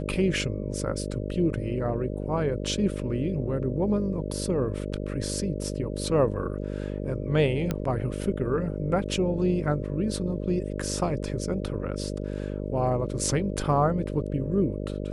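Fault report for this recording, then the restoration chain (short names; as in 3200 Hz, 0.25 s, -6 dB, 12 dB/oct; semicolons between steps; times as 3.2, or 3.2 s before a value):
buzz 50 Hz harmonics 12 -32 dBFS
7.71 pop -14 dBFS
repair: de-click; de-hum 50 Hz, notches 12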